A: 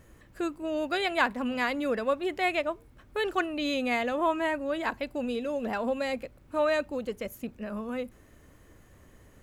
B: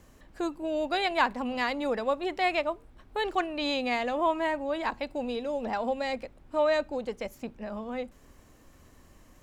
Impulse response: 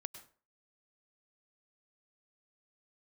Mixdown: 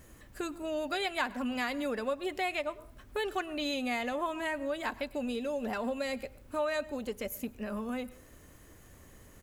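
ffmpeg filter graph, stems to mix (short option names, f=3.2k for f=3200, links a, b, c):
-filter_complex "[0:a]highshelf=f=4.5k:g=8.5,volume=-3.5dB,asplit=2[a][b];[b]volume=-4.5dB[c];[1:a]volume=-1,adelay=6.3,volume=-8.5dB[d];[2:a]atrim=start_sample=2205[e];[c][e]afir=irnorm=-1:irlink=0[f];[a][d][f]amix=inputs=3:normalize=0,acompressor=threshold=-34dB:ratio=2"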